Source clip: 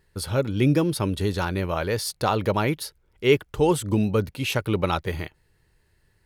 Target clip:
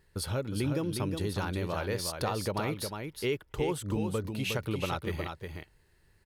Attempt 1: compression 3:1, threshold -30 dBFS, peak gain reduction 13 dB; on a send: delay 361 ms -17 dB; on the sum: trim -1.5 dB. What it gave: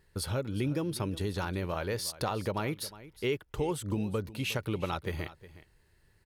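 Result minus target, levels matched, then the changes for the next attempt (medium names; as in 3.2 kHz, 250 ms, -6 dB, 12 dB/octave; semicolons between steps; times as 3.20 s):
echo-to-direct -11 dB
change: delay 361 ms -6 dB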